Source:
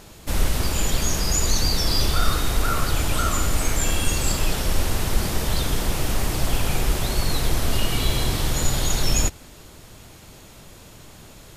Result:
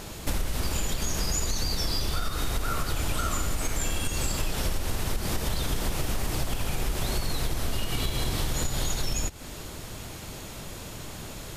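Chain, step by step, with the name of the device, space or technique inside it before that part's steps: serial compression, leveller first (compressor 3:1, threshold -19 dBFS, peak gain reduction 6.5 dB; compressor 5:1, threshold -30 dBFS, peak gain reduction 12.5 dB); gain +5.5 dB

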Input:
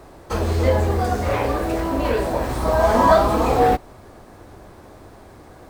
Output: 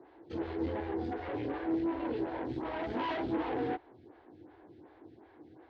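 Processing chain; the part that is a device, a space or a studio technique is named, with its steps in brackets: vibe pedal into a guitar amplifier (photocell phaser 2.7 Hz; tube stage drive 22 dB, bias 0.5; speaker cabinet 110–3500 Hz, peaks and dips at 190 Hz -8 dB, 320 Hz +9 dB, 600 Hz -9 dB, 1200 Hz -9 dB, 2500 Hz -4 dB); gain -7 dB

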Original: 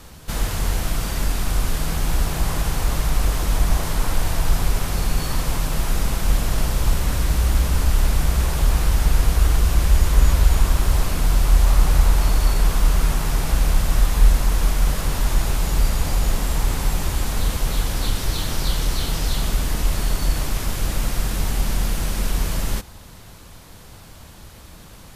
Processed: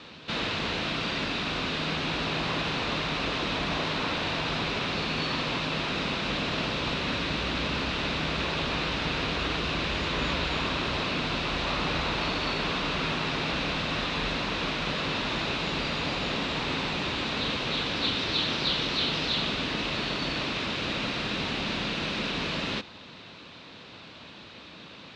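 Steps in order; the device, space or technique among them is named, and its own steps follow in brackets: kitchen radio (speaker cabinet 200–4400 Hz, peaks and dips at 270 Hz +3 dB, 790 Hz -4 dB, 2600 Hz +7 dB, 3800 Hz +7 dB)

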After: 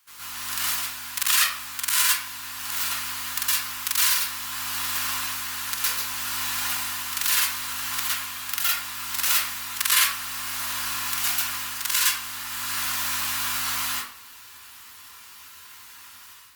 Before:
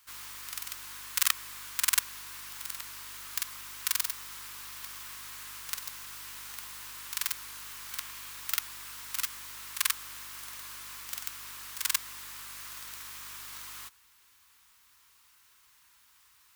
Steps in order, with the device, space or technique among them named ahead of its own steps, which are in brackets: far-field microphone of a smart speaker (reverb RT60 0.55 s, pre-delay 0.108 s, DRR -9 dB; HPF 110 Hz 6 dB/oct; AGC gain up to 10 dB; gain -1 dB; Opus 48 kbps 48000 Hz)

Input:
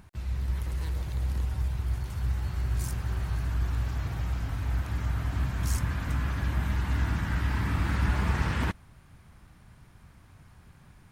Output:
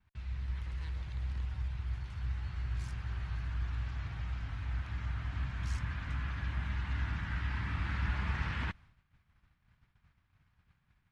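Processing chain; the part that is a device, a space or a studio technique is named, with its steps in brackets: hearing-loss simulation (LPF 2900 Hz 12 dB/oct; expander -45 dBFS); passive tone stack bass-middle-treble 5-5-5; gain +6.5 dB

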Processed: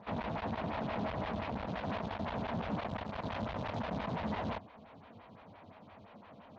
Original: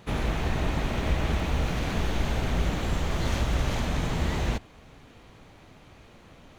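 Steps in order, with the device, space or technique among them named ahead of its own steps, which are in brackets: vibe pedal into a guitar amplifier (photocell phaser 5.8 Hz; tube stage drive 35 dB, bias 0.45; speaker cabinet 87–4300 Hz, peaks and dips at 95 Hz +8 dB, 210 Hz +8 dB, 360 Hz -6 dB, 660 Hz +6 dB, 970 Hz +6 dB)

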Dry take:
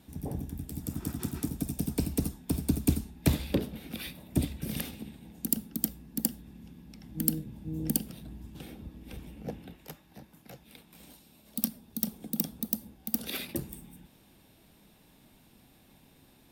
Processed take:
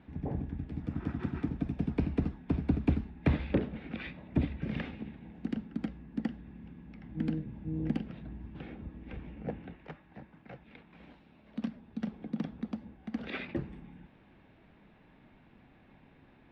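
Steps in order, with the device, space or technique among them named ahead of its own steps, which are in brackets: overdriven synthesiser ladder filter (soft clip -16.5 dBFS, distortion -14 dB; ladder low-pass 2600 Hz, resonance 30%); gain +7.5 dB

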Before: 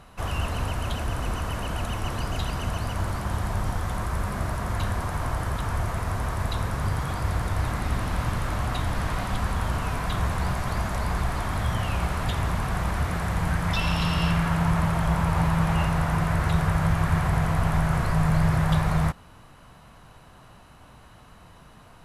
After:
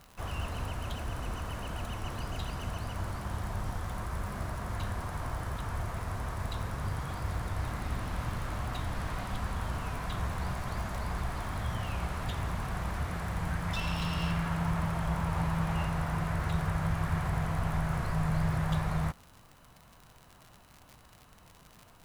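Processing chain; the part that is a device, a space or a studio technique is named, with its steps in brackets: record under a worn stylus (tracing distortion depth 0.03 ms; crackle 77/s -32 dBFS; white noise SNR 38 dB); gain -8 dB

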